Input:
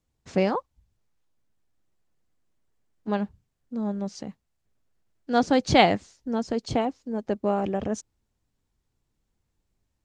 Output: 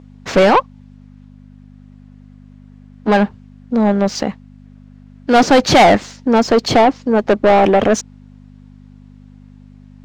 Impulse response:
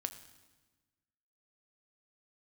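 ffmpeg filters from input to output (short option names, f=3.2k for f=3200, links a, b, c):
-filter_complex "[0:a]aeval=exprs='val(0)+0.00355*(sin(2*PI*50*n/s)+sin(2*PI*2*50*n/s)/2+sin(2*PI*3*50*n/s)/3+sin(2*PI*4*50*n/s)/4+sin(2*PI*5*50*n/s)/5)':c=same,asplit=2[a][b];[b]highpass=f=720:p=1,volume=29dB,asoftclip=type=tanh:threshold=-4.5dB[c];[a][c]amix=inputs=2:normalize=0,lowpass=f=2.7k:p=1,volume=-6dB,adynamicsmooth=sensitivity=7.5:basefreq=6.9k,volume=3.5dB"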